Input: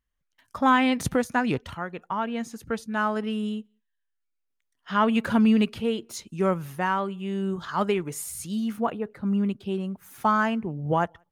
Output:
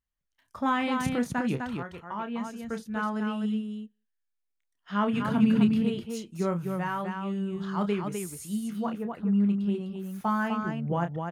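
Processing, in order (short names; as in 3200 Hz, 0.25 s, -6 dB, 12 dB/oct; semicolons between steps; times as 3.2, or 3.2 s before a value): dynamic EQ 180 Hz, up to +7 dB, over -38 dBFS, Q 1.4; 5.12–5.75 band noise 120–260 Hz -26 dBFS; loudspeakers at several distances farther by 10 m -8 dB, 87 m -5 dB; gain -7.5 dB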